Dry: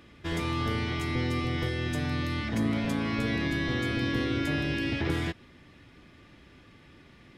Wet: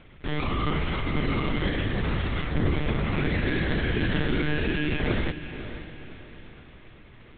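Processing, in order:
one-pitch LPC vocoder at 8 kHz 150 Hz
feedback delay with all-pass diffusion 538 ms, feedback 41%, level −11 dB
level +3.5 dB

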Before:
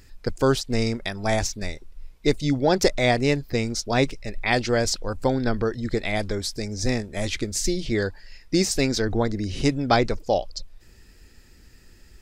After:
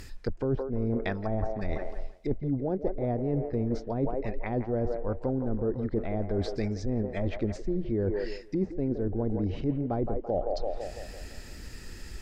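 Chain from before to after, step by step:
treble cut that deepens with the level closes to 500 Hz, closed at −20.5 dBFS
delay with a band-pass on its return 168 ms, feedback 49%, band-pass 820 Hz, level −7.5 dB
reversed playback
downward compressor 10 to 1, threshold −34 dBFS, peak gain reduction 19.5 dB
reversed playback
level +8.5 dB

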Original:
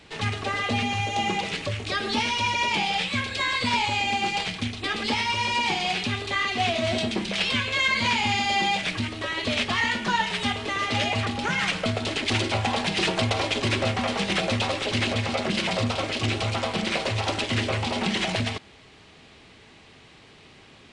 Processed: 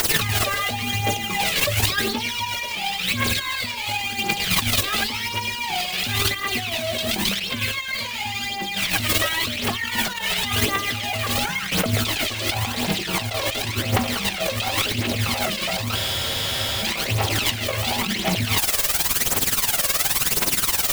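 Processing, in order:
high-shelf EQ 2,200 Hz +6.5 dB
background noise white −35 dBFS
amplitude tremolo 19 Hz, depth 76%
compressor whose output falls as the input rises −34 dBFS, ratio −1
phase shifter 0.93 Hz, delay 1.9 ms, feedback 56%
frozen spectrum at 0:15.97, 0.85 s
level +8.5 dB

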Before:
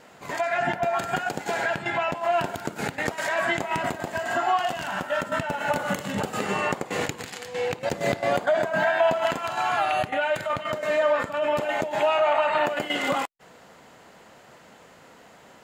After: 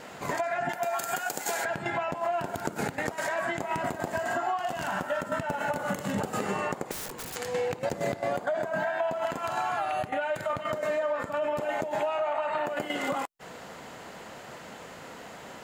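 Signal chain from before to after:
0:00.69–0:01.65: RIAA equalisation recording
downward compressor 6 to 1, threshold −33 dBFS, peak gain reduction 15.5 dB
0:06.91–0:07.36: wrap-around overflow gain 37 dB
dynamic equaliser 3,100 Hz, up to −6 dB, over −53 dBFS, Q 0.8
level +6.5 dB

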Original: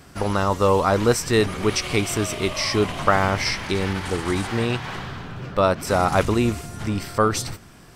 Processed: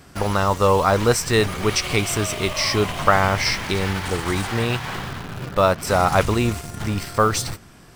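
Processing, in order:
dynamic equaliser 290 Hz, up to −5 dB, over −33 dBFS, Q 1.2
in parallel at −9 dB: bit reduction 5 bits

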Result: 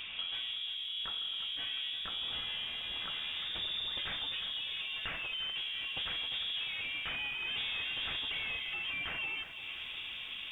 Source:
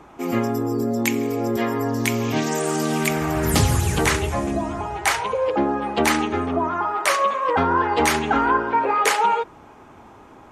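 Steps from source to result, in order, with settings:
0:05.98–0:08.32: low-shelf EQ 370 Hz +10.5 dB
soft clipping −20 dBFS, distortion −8 dB
downward compressor 16 to 1, threshold −40 dBFS, peak gain reduction 18.5 dB
voice inversion scrambler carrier 3,600 Hz
low-shelf EQ 180 Hz +9 dB
notch filter 1,400 Hz, Q 25
feedback echo at a low word length 348 ms, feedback 55%, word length 11 bits, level −10.5 dB
level +3 dB

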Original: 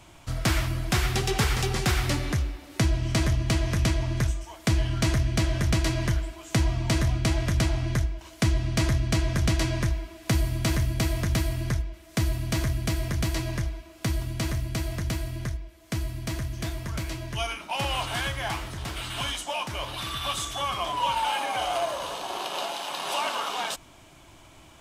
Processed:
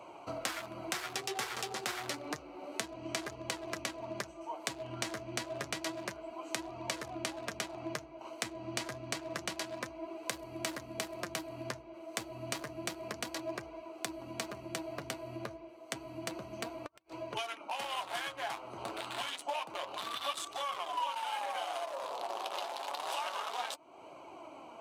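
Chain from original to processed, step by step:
adaptive Wiener filter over 25 samples
high-pass filter 490 Hz 12 dB per octave
downward compressor 4 to 1, threshold −49 dBFS, peak gain reduction 21.5 dB
0:16.71–0:17.25: gate with flip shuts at −39 dBFS, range −38 dB
flanger 0.29 Hz, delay 1.7 ms, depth 7.6 ms, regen +58%
level +15 dB

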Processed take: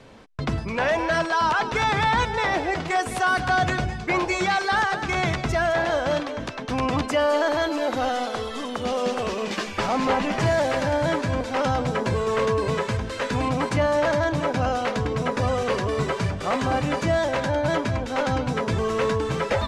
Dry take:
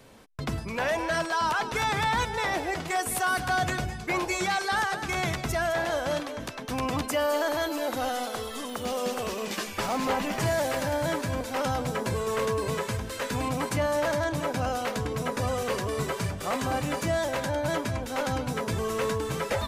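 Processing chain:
high-frequency loss of the air 90 metres
level +5.5 dB

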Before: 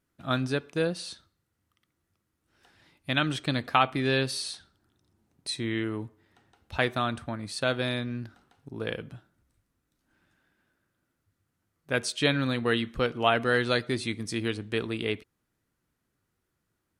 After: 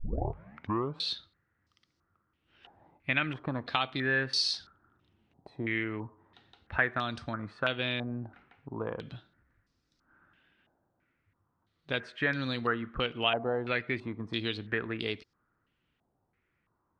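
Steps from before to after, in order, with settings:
turntable start at the beginning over 1.08 s
downward compressor 2 to 1, threshold −35 dBFS, peak gain reduction 10 dB
low-pass on a step sequencer 3 Hz 790–5,000 Hz

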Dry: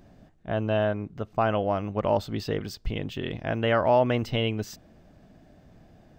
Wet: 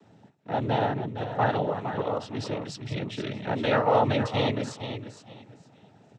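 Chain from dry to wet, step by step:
0:01.66–0:02.76: downward compressor, threshold −25 dBFS, peak gain reduction 7 dB
repeating echo 462 ms, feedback 23%, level −9.5 dB
cochlear-implant simulation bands 12

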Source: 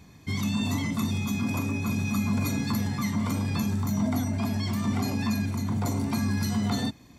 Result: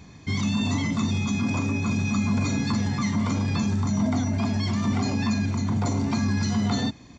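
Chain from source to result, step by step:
in parallel at −2.5 dB: brickwall limiter −25.5 dBFS, peak gain reduction 8.5 dB
on the sum: downsampling to 16,000 Hz

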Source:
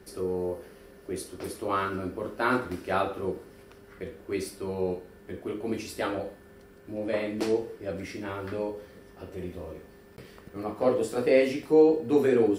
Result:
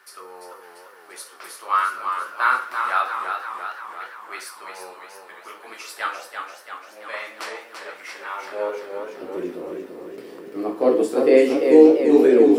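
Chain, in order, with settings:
high-pass filter sweep 1,200 Hz → 310 Hz, 0:08.24–0:09.00
feedback echo with a swinging delay time 341 ms, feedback 61%, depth 90 cents, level −6 dB
level +3 dB

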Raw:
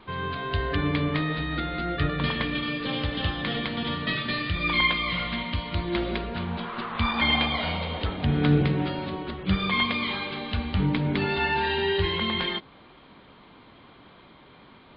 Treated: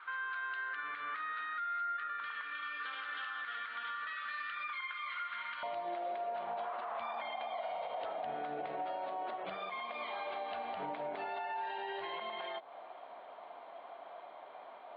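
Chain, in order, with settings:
high-pass with resonance 1,400 Hz, resonance Q 7.6, from 0:05.63 680 Hz
downward compressor 6 to 1, threshold −31 dBFS, peak gain reduction 16 dB
high-shelf EQ 3,700 Hz −9 dB
brickwall limiter −28 dBFS, peak gain reduction 9 dB
high-frequency loss of the air 190 metres
level −2.5 dB

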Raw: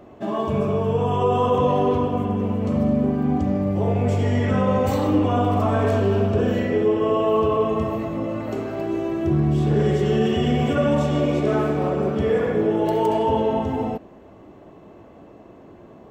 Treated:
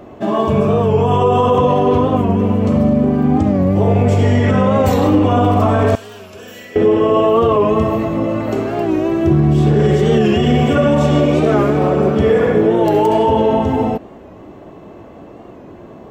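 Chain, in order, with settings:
0:05.95–0:06.76: first-order pre-emphasis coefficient 0.97
boost into a limiter +12 dB
wow of a warped record 45 rpm, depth 100 cents
level −3.5 dB

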